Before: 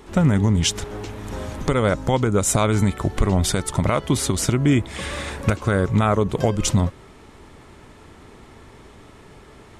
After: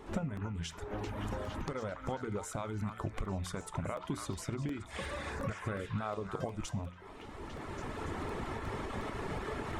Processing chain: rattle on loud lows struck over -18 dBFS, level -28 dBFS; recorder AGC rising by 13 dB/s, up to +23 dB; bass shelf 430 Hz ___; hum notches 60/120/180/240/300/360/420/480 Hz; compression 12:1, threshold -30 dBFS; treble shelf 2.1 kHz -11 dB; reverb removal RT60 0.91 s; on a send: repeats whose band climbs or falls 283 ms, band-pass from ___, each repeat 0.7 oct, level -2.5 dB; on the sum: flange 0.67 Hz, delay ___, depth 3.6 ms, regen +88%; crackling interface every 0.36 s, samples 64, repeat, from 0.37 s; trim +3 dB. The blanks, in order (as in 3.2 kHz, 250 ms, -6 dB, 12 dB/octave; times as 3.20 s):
-4 dB, 1.3 kHz, 8.8 ms